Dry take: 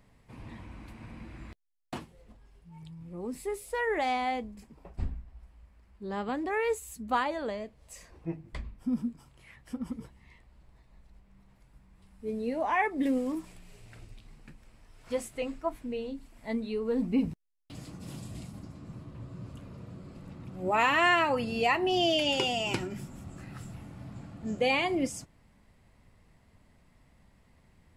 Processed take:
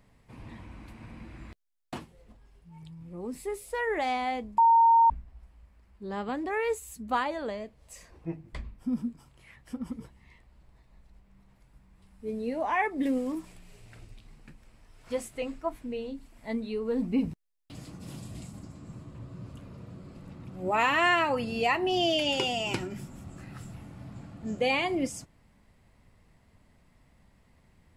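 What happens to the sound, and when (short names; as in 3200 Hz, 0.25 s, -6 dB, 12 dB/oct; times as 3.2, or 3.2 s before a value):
4.58–5.1 bleep 919 Hz -16 dBFS
18.42–19.19 bell 7500 Hz +8 dB 0.37 oct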